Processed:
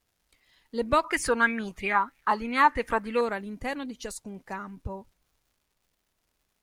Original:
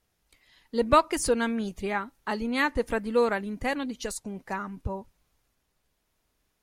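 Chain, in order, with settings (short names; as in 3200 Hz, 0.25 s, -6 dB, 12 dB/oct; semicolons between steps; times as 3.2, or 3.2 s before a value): crackle 230/s -56 dBFS; 1.04–3.21 LFO bell 3.1 Hz 970–2400 Hz +18 dB; gain -3.5 dB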